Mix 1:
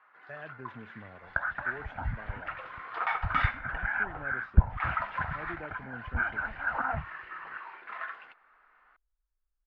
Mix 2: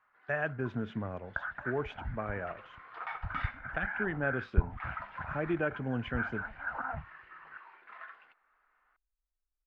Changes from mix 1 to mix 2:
speech +11.5 dB; first sound -9.5 dB; second sound -6.0 dB

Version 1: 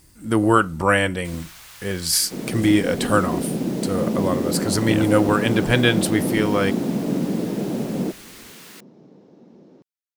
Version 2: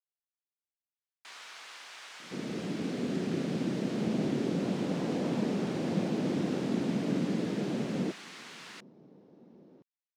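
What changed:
speech: muted; second sound -7.5 dB; master: add air absorption 99 m

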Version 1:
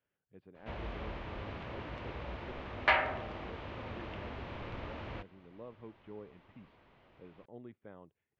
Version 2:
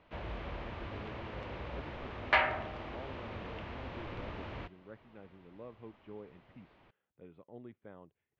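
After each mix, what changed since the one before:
background: entry -0.55 s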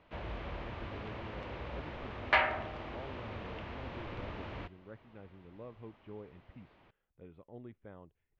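speech: remove HPF 130 Hz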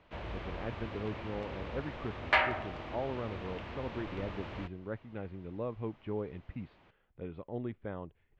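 speech +11.0 dB; background: remove air absorption 64 m

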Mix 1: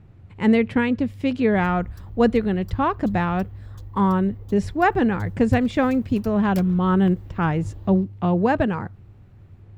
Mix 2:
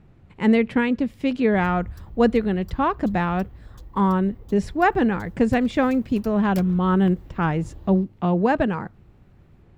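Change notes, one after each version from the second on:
speech: add bell 99 Hz -14.5 dB 0.34 oct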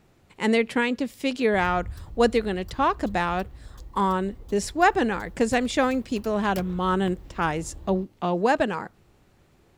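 speech: add tone controls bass -11 dB, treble +14 dB

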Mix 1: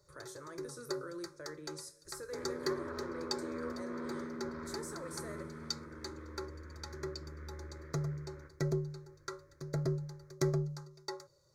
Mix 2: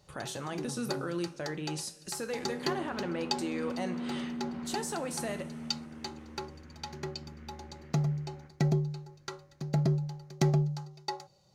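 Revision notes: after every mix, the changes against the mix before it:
speech +7.5 dB; second sound -5.0 dB; master: remove fixed phaser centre 770 Hz, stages 6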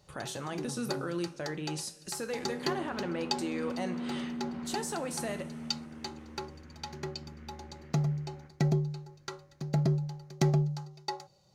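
none

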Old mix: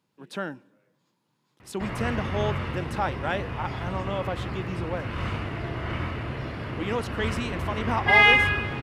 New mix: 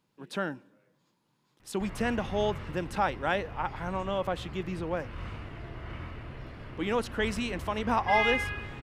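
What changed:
background -11.5 dB; master: remove HPF 75 Hz

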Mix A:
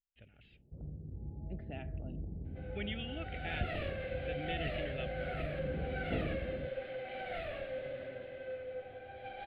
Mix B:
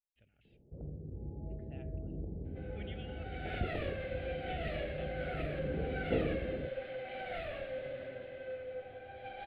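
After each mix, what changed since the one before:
speech -10.0 dB; first sound: add bell 460 Hz +8.5 dB 1.2 oct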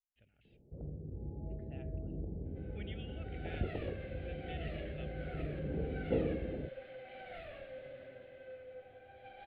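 second sound -7.5 dB

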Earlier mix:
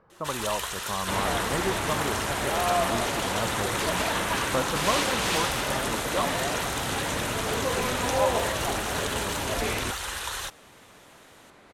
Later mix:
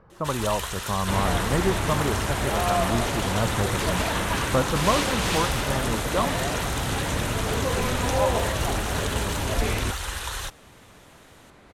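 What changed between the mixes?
speech +3.5 dB; master: add low shelf 150 Hz +11.5 dB

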